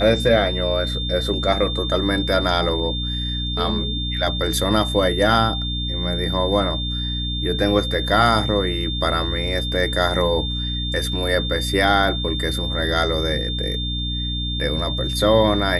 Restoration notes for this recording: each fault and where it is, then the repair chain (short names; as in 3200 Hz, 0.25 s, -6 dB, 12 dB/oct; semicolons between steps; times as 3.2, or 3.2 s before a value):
hum 60 Hz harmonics 5 -26 dBFS
tone 3600 Hz -26 dBFS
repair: notch 3600 Hz, Q 30; de-hum 60 Hz, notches 5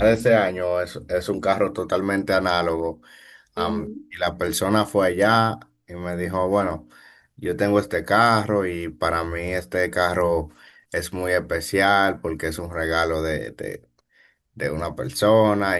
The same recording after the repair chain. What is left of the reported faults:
none